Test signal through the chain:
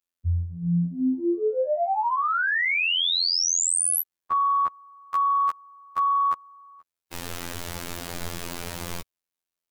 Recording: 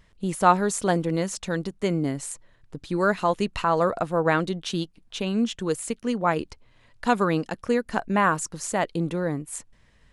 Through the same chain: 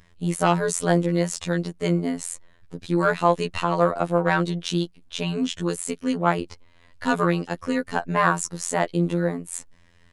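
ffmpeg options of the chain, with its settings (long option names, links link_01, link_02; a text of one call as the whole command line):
ffmpeg -i in.wav -af "acontrast=68,afftfilt=real='hypot(re,im)*cos(PI*b)':imag='0':win_size=2048:overlap=0.75,volume=-1dB" out.wav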